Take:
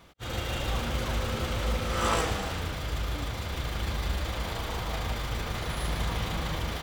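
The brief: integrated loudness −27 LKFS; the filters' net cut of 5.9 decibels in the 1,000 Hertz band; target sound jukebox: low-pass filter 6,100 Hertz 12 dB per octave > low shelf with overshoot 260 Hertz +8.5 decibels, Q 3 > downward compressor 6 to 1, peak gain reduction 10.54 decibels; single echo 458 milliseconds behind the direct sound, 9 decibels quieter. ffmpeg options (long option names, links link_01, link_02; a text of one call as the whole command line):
ffmpeg -i in.wav -af "lowpass=6100,lowshelf=frequency=260:width_type=q:width=3:gain=8.5,equalizer=frequency=1000:width_type=o:gain=-7,aecho=1:1:458:0.355,acompressor=threshold=-26dB:ratio=6,volume=4.5dB" out.wav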